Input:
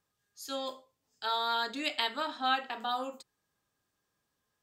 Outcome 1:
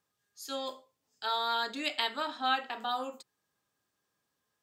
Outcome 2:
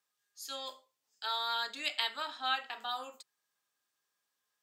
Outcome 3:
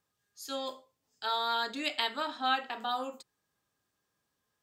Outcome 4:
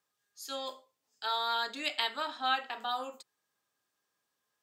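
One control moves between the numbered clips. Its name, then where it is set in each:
high-pass filter, corner frequency: 130, 1,400, 46, 500 Hertz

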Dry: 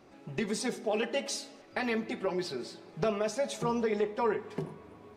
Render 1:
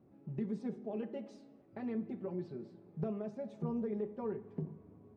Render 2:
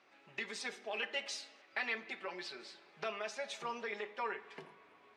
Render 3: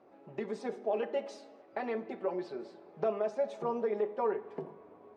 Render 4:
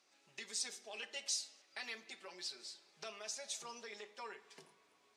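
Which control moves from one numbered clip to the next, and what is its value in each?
resonant band-pass, frequency: 140, 2,300, 600, 6,400 Hertz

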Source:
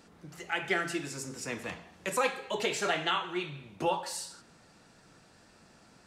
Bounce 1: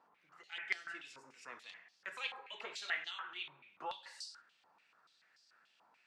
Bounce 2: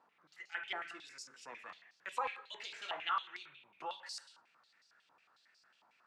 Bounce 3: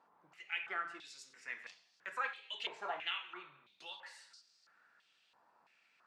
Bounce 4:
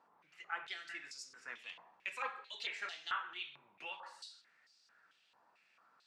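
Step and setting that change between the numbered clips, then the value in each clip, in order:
band-pass on a step sequencer, speed: 6.9, 11, 3, 4.5 Hertz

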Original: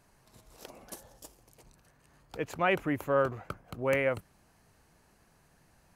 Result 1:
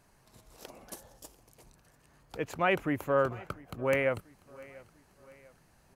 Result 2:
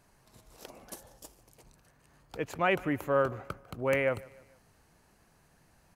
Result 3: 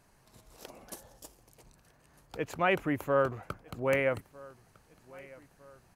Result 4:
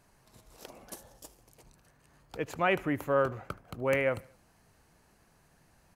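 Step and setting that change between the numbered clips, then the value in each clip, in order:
repeating echo, delay time: 693, 149, 1,254, 75 milliseconds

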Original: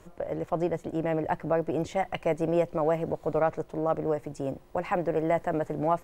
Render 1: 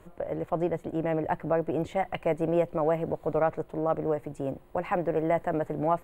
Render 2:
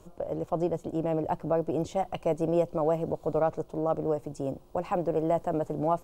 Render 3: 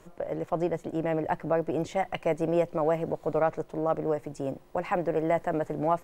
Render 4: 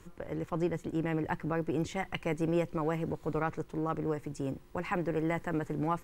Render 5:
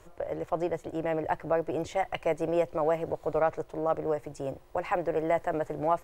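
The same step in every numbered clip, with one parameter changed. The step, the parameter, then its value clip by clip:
parametric band, centre frequency: 5,600, 1,900, 63, 640, 210 Hertz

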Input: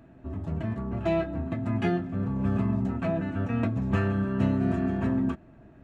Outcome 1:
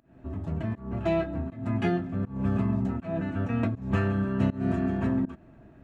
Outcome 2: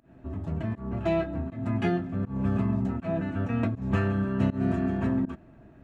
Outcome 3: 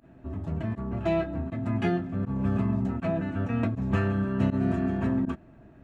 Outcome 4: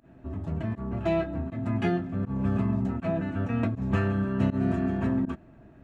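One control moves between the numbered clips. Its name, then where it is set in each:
fake sidechain pumping, release: 243, 158, 64, 95 milliseconds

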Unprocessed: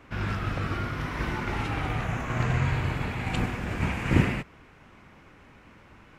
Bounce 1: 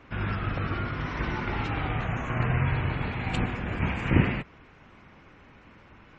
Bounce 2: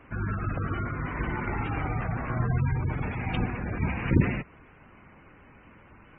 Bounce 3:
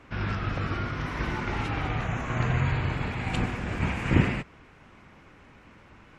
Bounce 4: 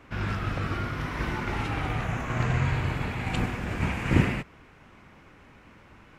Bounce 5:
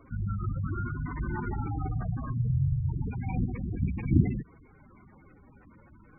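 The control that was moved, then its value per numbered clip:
gate on every frequency bin, under each frame's peak: −35, −20, −45, −60, −10 decibels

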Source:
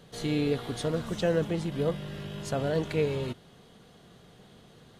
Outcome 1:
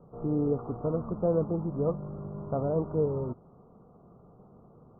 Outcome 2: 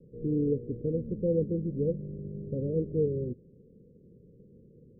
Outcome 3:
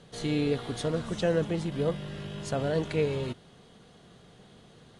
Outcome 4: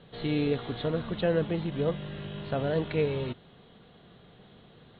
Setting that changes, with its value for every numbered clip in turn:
Butterworth low-pass, frequency: 1,300, 530, 11,000, 4,100 Hertz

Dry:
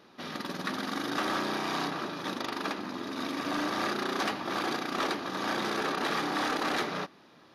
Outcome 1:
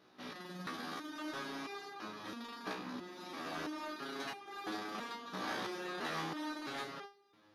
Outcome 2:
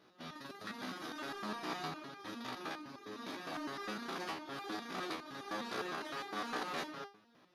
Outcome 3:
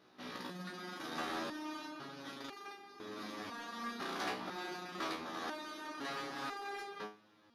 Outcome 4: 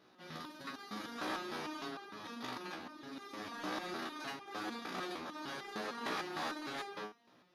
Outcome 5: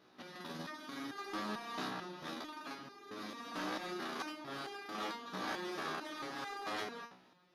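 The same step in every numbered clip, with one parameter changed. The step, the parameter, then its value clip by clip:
step-sequenced resonator, speed: 3, 9.8, 2, 6.6, 4.5 Hertz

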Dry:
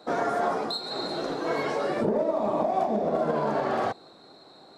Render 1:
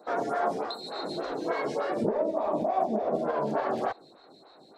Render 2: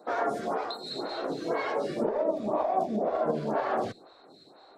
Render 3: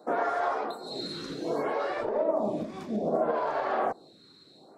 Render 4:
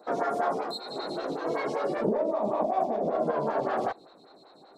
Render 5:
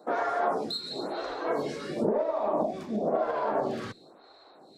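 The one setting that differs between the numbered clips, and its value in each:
phaser with staggered stages, speed: 3.4, 2, 0.64, 5.2, 0.98 Hertz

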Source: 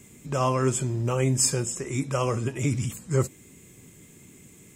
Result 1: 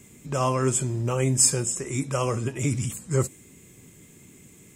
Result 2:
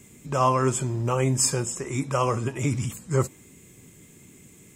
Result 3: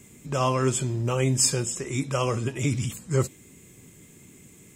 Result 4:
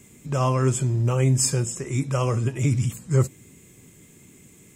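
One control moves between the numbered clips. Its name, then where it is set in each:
dynamic equaliser, frequency: 9,100, 980, 3,600, 120 Hertz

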